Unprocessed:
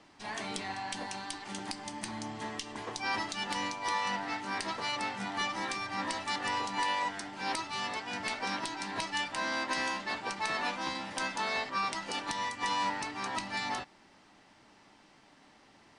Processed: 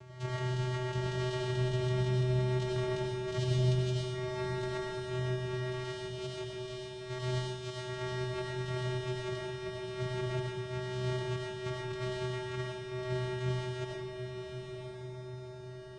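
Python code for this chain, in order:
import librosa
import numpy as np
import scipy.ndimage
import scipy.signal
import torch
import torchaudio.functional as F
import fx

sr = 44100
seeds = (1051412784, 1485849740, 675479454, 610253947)

y = fx.spec_erase(x, sr, start_s=3.37, length_s=0.67, low_hz=340.0, high_hz=4800.0)
y = fx.peak_eq(y, sr, hz=4900.0, db=13.0, octaves=1.2, at=(5.84, 7.76))
y = fx.over_compress(y, sr, threshold_db=-42.0, ratio=-1.0)
y = fx.vocoder(y, sr, bands=4, carrier='square', carrier_hz=126.0)
y = fx.echo_diffused(y, sr, ms=970, feedback_pct=45, wet_db=-6.0)
y = fx.rev_freeverb(y, sr, rt60_s=0.7, hf_ratio=0.85, predelay_ms=50, drr_db=-2.5)
y = y * 10.0 ** (3.0 / 20.0)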